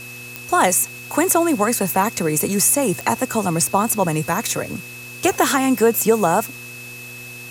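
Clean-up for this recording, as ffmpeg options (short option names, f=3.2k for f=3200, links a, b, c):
-af "adeclick=t=4,bandreject=f=121.3:t=h:w=4,bandreject=f=242.6:t=h:w=4,bandreject=f=363.9:t=h:w=4,bandreject=f=485.2:t=h:w=4,bandreject=f=2.6k:w=30,afftdn=nr=29:nf=-36"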